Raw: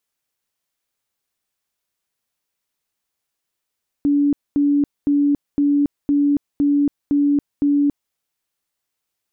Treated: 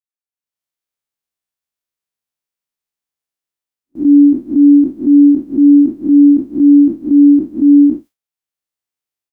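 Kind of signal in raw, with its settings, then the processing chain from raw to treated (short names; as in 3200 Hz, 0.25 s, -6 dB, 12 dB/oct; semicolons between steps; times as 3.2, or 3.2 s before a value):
tone bursts 287 Hz, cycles 80, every 0.51 s, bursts 8, -13 dBFS
time blur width 0.125 s; gate with hold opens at -41 dBFS; AGC gain up to 14.5 dB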